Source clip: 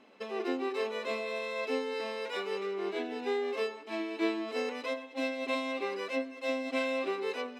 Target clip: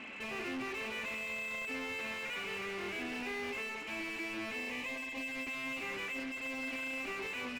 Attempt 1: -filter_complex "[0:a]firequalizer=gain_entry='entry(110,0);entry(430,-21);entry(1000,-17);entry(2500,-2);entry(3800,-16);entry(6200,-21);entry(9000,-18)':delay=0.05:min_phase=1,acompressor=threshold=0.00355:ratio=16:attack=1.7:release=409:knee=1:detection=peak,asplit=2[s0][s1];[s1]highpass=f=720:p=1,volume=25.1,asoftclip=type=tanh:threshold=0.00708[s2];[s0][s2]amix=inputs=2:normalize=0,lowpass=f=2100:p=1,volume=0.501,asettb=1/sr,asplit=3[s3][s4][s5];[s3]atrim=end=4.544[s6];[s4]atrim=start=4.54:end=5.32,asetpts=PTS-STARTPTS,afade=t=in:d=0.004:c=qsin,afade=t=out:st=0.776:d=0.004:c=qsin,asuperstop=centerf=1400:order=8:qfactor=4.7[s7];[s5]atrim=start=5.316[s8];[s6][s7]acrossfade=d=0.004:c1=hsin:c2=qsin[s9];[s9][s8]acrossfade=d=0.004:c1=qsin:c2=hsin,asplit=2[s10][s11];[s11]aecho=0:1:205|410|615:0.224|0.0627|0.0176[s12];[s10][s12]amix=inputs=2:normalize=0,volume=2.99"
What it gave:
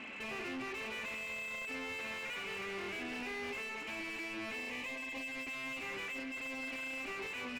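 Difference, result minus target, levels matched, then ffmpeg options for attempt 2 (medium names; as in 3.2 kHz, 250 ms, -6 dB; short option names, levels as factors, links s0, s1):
compression: peak gain reduction +7 dB
-filter_complex "[0:a]firequalizer=gain_entry='entry(110,0);entry(430,-21);entry(1000,-17);entry(2500,-2);entry(3800,-16);entry(6200,-21);entry(9000,-18)':delay=0.05:min_phase=1,acompressor=threshold=0.00841:ratio=16:attack=1.7:release=409:knee=1:detection=peak,asplit=2[s0][s1];[s1]highpass=f=720:p=1,volume=25.1,asoftclip=type=tanh:threshold=0.00708[s2];[s0][s2]amix=inputs=2:normalize=0,lowpass=f=2100:p=1,volume=0.501,asettb=1/sr,asplit=3[s3][s4][s5];[s3]atrim=end=4.544[s6];[s4]atrim=start=4.54:end=5.32,asetpts=PTS-STARTPTS,afade=t=in:d=0.004:c=qsin,afade=t=out:st=0.776:d=0.004:c=qsin,asuperstop=centerf=1400:order=8:qfactor=4.7[s7];[s5]atrim=start=5.316[s8];[s6][s7]acrossfade=d=0.004:c1=hsin:c2=qsin[s9];[s9][s8]acrossfade=d=0.004:c1=qsin:c2=hsin,asplit=2[s10][s11];[s11]aecho=0:1:205|410|615:0.224|0.0627|0.0176[s12];[s10][s12]amix=inputs=2:normalize=0,volume=2.99"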